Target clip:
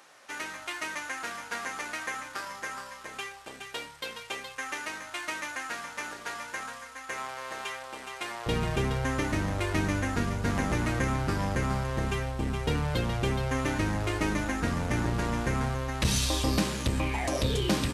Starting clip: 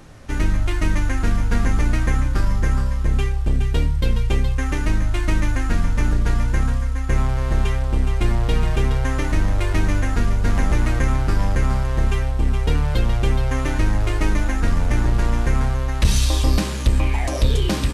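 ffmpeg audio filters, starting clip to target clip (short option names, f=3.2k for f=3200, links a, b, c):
-af "asetnsamples=n=441:p=0,asendcmd='8.46 highpass f 110',highpass=750,volume=-3.5dB"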